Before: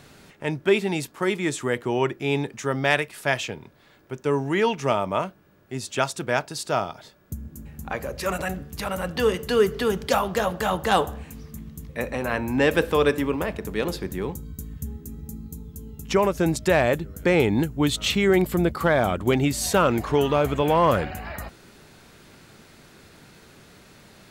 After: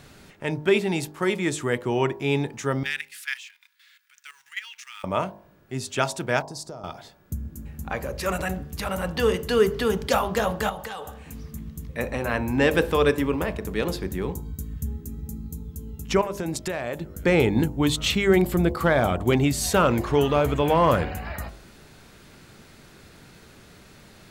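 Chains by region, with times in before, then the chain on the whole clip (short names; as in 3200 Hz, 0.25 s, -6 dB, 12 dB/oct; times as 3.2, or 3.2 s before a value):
2.83–5.04 G.711 law mismatch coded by mu + inverse Chebyshev high-pass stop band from 650 Hz, stop band 50 dB + level quantiser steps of 14 dB
6.42–6.84 LPF 2300 Hz 6 dB/oct + compressor 5:1, threshold -33 dBFS + EQ curve 570 Hz 0 dB, 2800 Hz -15 dB, 5200 Hz +6 dB
10.69–11.26 low shelf 340 Hz -11 dB + compressor 12:1, threshold -29 dBFS + notch comb 340 Hz
16.21–17.15 HPF 170 Hz 6 dB/oct + compressor 12:1, threshold -24 dBFS
whole clip: low shelf 100 Hz +6 dB; de-hum 50.27 Hz, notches 22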